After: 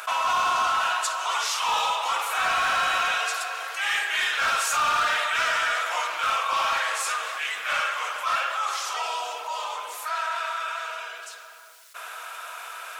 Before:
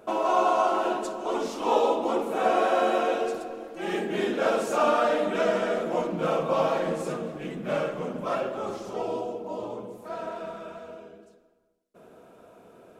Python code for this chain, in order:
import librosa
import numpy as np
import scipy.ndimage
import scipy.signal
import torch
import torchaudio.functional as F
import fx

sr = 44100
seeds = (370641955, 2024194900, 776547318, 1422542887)

p1 = scipy.signal.sosfilt(scipy.signal.butter(4, 1200.0, 'highpass', fs=sr, output='sos'), x)
p2 = 10.0 ** (-31.5 / 20.0) * (np.abs((p1 / 10.0 ** (-31.5 / 20.0) + 3.0) % 4.0 - 2.0) - 1.0)
p3 = p1 + F.gain(torch.from_numpy(p2), -4.0).numpy()
p4 = fx.env_flatten(p3, sr, amount_pct=50)
y = F.gain(torch.from_numpy(p4), 5.5).numpy()